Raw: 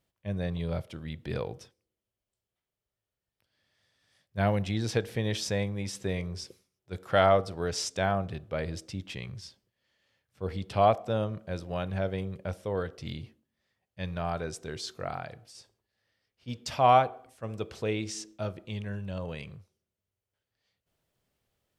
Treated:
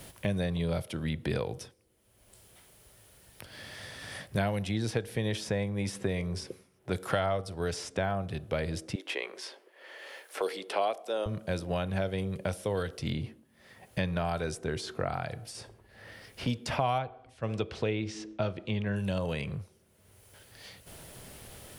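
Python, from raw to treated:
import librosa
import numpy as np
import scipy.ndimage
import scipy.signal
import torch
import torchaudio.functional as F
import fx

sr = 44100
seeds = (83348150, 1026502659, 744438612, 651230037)

y = fx.steep_highpass(x, sr, hz=350.0, slope=36, at=(8.95, 11.26))
y = fx.lowpass(y, sr, hz=3700.0, slope=12, at=(16.98, 18.96))
y = fx.peak_eq(y, sr, hz=10000.0, db=10.5, octaves=0.34)
y = fx.notch(y, sr, hz=1200.0, q=23.0)
y = fx.band_squash(y, sr, depth_pct=100)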